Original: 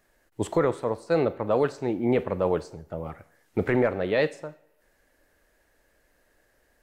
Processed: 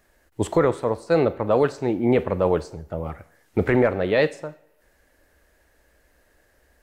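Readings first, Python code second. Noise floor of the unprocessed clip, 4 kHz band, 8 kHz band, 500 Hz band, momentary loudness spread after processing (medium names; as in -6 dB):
-67 dBFS, +4.0 dB, no reading, +4.0 dB, 15 LU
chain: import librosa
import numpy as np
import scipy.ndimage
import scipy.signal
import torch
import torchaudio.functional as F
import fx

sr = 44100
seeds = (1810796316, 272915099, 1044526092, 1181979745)

y = fx.peak_eq(x, sr, hz=64.0, db=9.0, octaves=0.63)
y = F.gain(torch.from_numpy(y), 4.0).numpy()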